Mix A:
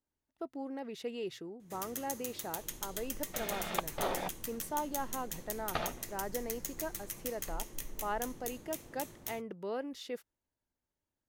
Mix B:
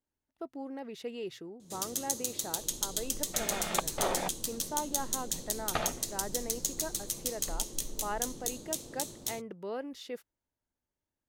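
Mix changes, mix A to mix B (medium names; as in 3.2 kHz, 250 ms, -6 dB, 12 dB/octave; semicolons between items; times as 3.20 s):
first sound: add graphic EQ 125/250/500/2000/4000/8000 Hz +3/+5/+6/-8/+12/+10 dB; second sound +3.0 dB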